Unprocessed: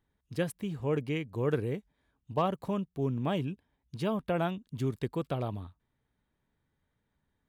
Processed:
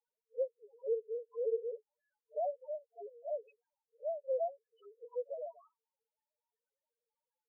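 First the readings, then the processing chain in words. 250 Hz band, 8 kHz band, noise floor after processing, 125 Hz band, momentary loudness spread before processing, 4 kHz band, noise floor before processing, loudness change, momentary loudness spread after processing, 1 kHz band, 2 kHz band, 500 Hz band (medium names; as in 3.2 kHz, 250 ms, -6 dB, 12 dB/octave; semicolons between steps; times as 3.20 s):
under -35 dB, no reading, under -85 dBFS, under -40 dB, 9 LU, under -35 dB, -80 dBFS, -6.5 dB, 12 LU, -9.0 dB, under -35 dB, -2.5 dB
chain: brick-wall FIR high-pass 430 Hz; low-pass that closes with the level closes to 1.1 kHz, closed at -31 dBFS; distance through air 480 m; on a send: reverse echo 47 ms -23.5 dB; on the sum: loudest bins only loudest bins 1; trim +7 dB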